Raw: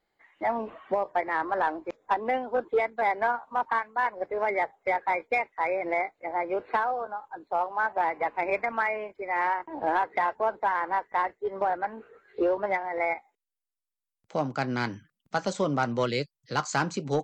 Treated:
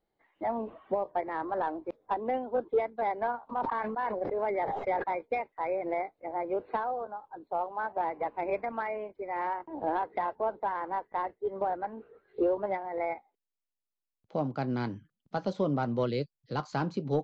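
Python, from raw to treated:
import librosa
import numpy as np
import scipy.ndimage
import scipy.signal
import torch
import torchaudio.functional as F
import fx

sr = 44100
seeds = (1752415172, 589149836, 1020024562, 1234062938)

y = scipy.signal.sosfilt(scipy.signal.butter(4, 4100.0, 'lowpass', fs=sr, output='sos'), x)
y = fx.peak_eq(y, sr, hz=2000.0, db=-12.0, octaves=2.1)
y = fx.sustainer(y, sr, db_per_s=28.0, at=(3.49, 5.02), fade=0.02)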